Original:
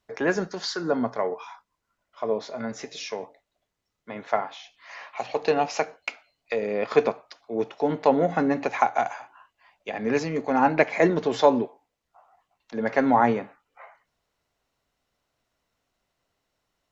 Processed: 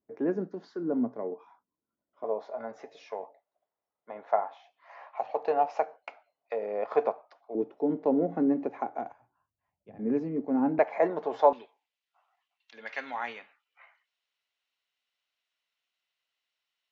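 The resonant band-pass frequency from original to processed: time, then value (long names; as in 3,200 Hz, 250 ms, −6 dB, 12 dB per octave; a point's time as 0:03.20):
resonant band-pass, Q 1.8
280 Hz
from 0:02.24 730 Hz
from 0:07.55 310 Hz
from 0:09.12 110 Hz
from 0:09.99 270 Hz
from 0:10.79 760 Hz
from 0:11.53 3,000 Hz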